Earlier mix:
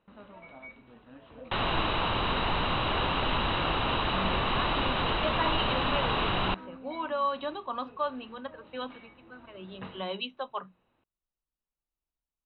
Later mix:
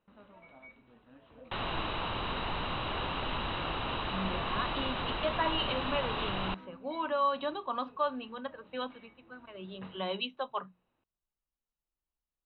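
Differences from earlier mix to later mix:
first sound -6.5 dB; second sound -6.5 dB

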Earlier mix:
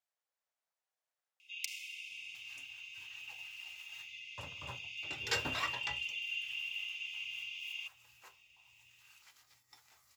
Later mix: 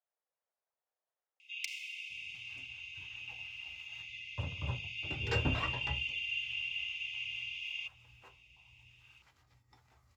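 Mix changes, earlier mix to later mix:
first sound +9.0 dB; master: add tilt -4.5 dB/oct

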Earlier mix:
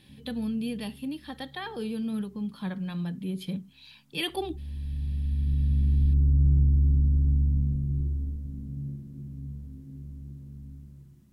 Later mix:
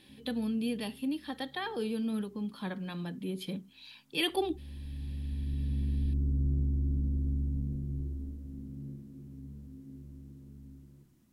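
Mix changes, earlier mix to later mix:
background: send -7.5 dB; master: add resonant low shelf 210 Hz -6.5 dB, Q 1.5

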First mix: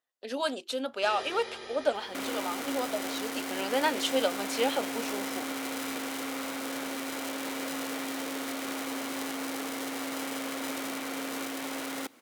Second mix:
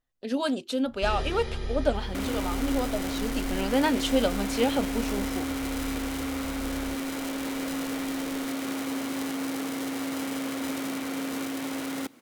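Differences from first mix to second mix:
second sound: add Bessel high-pass 310 Hz, order 2; master: remove HPF 470 Hz 12 dB/oct

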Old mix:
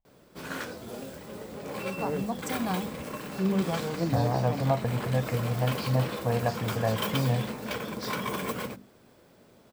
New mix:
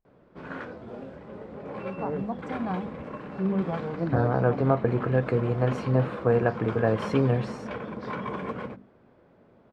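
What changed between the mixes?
speech: remove fixed phaser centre 1400 Hz, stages 6; background: add LPF 1700 Hz 12 dB/oct

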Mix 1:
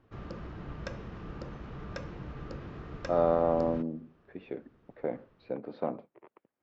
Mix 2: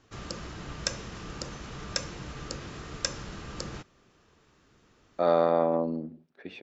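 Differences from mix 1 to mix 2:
speech: entry +2.10 s; master: remove tape spacing loss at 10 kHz 40 dB

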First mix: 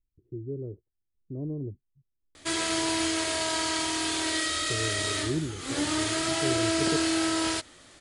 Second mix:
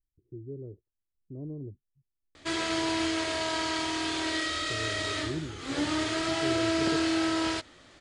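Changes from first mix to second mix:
speech -5.0 dB; master: add air absorption 95 m

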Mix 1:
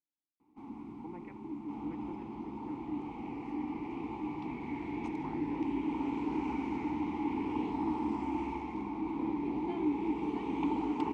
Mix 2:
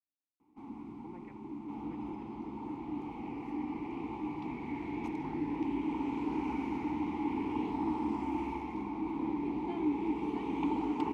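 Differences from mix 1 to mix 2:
speech -3.5 dB; second sound: remove steep low-pass 9600 Hz 36 dB/oct

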